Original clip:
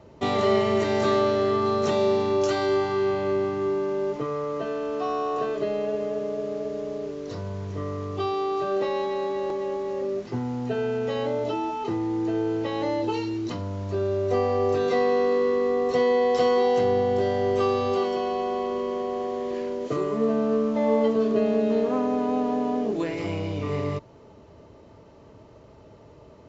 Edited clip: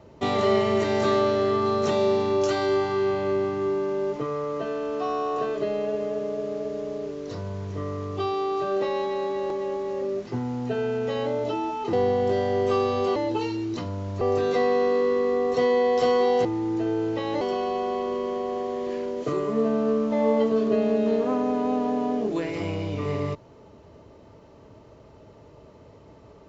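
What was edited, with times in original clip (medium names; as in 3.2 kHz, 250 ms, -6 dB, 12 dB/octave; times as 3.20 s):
11.93–12.89 s: swap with 16.82–18.05 s
13.94–14.58 s: delete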